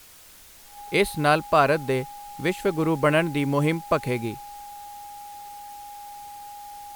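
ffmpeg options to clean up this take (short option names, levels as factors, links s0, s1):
-af "bandreject=f=820:w=30,afftdn=nr=21:nf=-47"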